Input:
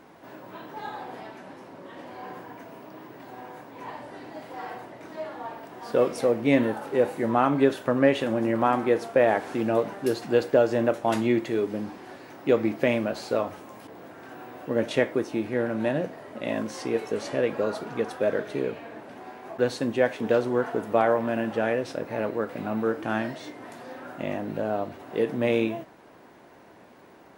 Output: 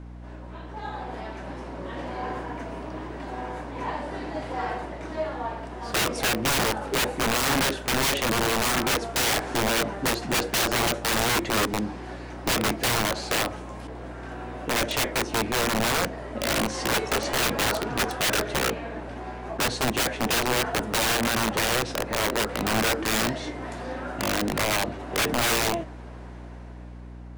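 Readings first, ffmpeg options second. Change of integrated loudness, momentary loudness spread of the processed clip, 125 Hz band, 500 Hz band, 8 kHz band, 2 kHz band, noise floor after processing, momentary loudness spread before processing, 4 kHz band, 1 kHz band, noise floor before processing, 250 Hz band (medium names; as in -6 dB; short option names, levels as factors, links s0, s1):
+0.5 dB, 15 LU, +3.5 dB, -4.5 dB, +20.0 dB, +7.0 dB, -40 dBFS, 20 LU, +15.5 dB, +3.5 dB, -51 dBFS, -2.5 dB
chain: -af "lowpass=f=9800:w=0.5412,lowpass=f=9800:w=1.3066,dynaudnorm=f=270:g=9:m=3.16,highpass=f=50:w=0.5412,highpass=f=50:w=1.3066,aeval=exprs='(mod(5.96*val(0)+1,2)-1)/5.96':c=same,aeval=exprs='val(0)+0.0141*(sin(2*PI*60*n/s)+sin(2*PI*2*60*n/s)/2+sin(2*PI*3*60*n/s)/3+sin(2*PI*4*60*n/s)/4+sin(2*PI*5*60*n/s)/5)':c=same,volume=0.75"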